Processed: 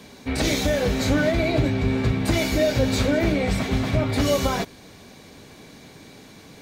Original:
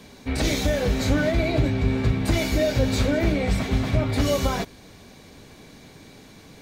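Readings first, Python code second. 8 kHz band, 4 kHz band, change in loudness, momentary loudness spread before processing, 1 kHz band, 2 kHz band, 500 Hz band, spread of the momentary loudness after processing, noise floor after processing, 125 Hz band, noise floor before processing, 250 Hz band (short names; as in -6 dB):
+2.0 dB, +2.0 dB, +1.0 dB, 3 LU, +2.0 dB, +2.0 dB, +2.0 dB, 4 LU, -46 dBFS, -0.5 dB, -48 dBFS, +1.5 dB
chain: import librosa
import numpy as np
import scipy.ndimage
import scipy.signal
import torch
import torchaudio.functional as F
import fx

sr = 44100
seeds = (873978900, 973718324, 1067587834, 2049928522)

y = fx.low_shelf(x, sr, hz=61.0, db=-9.5)
y = y * librosa.db_to_amplitude(2.0)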